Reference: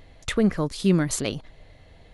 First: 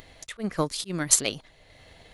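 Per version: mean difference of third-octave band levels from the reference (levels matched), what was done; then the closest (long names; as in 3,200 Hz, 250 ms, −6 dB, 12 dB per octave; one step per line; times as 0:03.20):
5.0 dB: volume swells 243 ms
spectral tilt +2 dB per octave
transient designer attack +8 dB, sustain −1 dB
upward compression, threshold −43 dBFS
level −1.5 dB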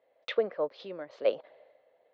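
8.0 dB: Bessel low-pass filter 2,500 Hz, order 8
downward compressor 3 to 1, threshold −35 dBFS, peak gain reduction 15 dB
high-pass with resonance 540 Hz, resonance Q 4.9
multiband upward and downward expander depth 100%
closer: first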